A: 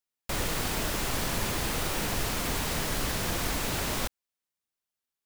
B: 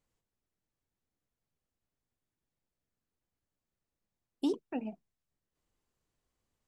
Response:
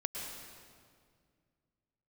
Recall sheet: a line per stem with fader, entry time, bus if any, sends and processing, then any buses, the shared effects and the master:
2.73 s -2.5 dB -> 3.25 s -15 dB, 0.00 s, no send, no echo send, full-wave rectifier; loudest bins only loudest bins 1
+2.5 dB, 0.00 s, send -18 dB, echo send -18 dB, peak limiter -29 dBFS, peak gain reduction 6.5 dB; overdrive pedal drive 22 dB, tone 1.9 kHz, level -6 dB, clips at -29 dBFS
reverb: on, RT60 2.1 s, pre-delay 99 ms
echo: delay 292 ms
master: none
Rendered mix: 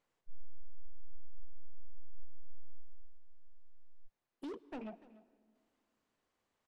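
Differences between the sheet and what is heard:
stem A -2.5 dB -> +4.0 dB; stem B +2.5 dB -> -9.0 dB

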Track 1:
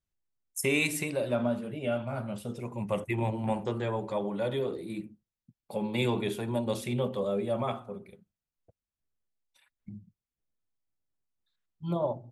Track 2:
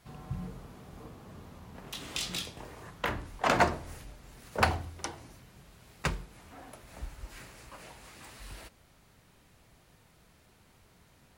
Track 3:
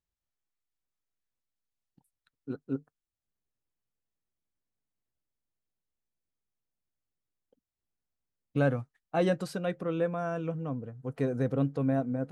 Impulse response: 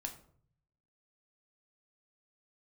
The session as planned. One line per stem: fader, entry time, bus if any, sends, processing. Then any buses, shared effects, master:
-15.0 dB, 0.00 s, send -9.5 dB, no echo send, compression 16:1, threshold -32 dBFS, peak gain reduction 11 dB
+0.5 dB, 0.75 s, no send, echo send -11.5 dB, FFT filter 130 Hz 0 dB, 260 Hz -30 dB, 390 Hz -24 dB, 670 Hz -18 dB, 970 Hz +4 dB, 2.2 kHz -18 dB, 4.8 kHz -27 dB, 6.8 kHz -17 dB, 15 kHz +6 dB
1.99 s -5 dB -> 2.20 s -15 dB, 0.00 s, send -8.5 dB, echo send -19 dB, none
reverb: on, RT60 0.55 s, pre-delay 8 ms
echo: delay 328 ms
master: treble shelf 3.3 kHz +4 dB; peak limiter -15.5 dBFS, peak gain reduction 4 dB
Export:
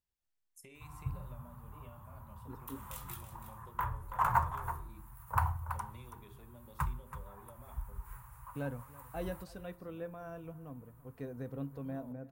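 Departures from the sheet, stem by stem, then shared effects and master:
stem 1 -15.0 dB -> -22.5 dB; master: missing treble shelf 3.3 kHz +4 dB

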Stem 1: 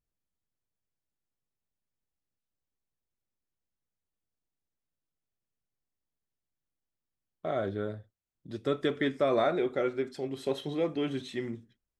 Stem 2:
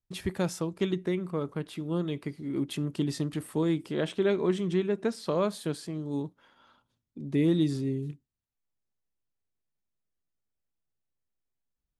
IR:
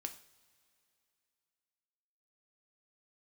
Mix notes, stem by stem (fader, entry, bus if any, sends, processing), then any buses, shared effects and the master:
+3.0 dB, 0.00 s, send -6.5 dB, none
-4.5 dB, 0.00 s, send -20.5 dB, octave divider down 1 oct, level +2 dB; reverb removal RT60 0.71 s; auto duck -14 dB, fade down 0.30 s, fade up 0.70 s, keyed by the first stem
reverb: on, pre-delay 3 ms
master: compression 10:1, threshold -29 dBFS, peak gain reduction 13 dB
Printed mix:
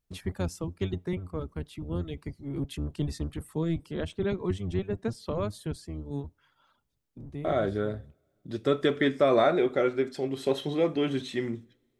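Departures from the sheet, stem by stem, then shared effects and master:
stem 1: send -6.5 dB -> -12.5 dB; master: missing compression 10:1, threshold -29 dBFS, peak gain reduction 13 dB

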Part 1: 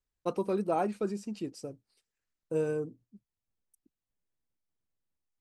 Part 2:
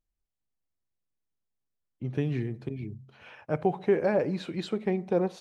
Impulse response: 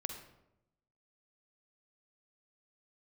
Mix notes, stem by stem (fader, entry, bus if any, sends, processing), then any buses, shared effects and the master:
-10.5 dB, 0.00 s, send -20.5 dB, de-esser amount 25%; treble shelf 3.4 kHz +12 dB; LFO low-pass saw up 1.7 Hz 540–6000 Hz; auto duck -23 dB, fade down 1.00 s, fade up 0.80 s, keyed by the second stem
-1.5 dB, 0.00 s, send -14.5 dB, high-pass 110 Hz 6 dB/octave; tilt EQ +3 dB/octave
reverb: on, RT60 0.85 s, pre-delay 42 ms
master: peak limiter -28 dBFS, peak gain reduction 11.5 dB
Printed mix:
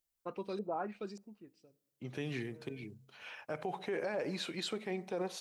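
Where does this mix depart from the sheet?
stem 2: send off; reverb return -6.5 dB

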